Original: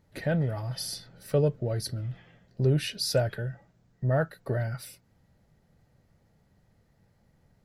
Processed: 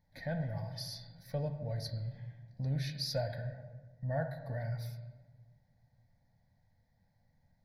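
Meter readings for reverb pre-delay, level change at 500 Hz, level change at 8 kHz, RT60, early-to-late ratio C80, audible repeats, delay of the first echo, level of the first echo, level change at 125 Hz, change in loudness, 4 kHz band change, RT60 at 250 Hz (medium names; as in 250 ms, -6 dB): 3 ms, -11.0 dB, -13.0 dB, 1.4 s, 14.5 dB, no echo, no echo, no echo, -8.0 dB, -9.0 dB, -7.5 dB, 2.1 s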